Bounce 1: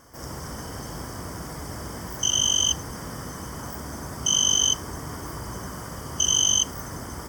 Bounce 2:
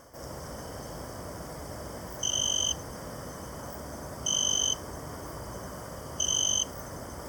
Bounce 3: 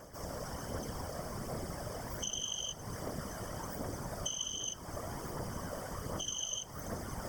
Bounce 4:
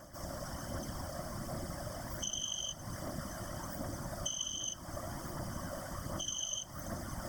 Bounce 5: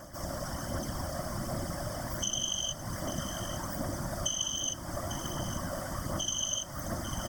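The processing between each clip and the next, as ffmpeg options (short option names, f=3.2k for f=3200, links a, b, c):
-af "equalizer=f=580:w=2.3:g=9,areverse,acompressor=mode=upward:threshold=-32dB:ratio=2.5,areverse,volume=-6.5dB"
-af "acompressor=threshold=-36dB:ratio=5,aphaser=in_gain=1:out_gain=1:delay=1.8:decay=0.37:speed=1.3:type=triangular,afftfilt=real='hypot(re,im)*cos(2*PI*random(0))':imag='hypot(re,im)*sin(2*PI*random(1))':win_size=512:overlap=0.75,volume=5dB"
-af "superequalizer=7b=0.251:9b=0.708:12b=0.562"
-af "aecho=1:1:848:0.266,volume=5.5dB"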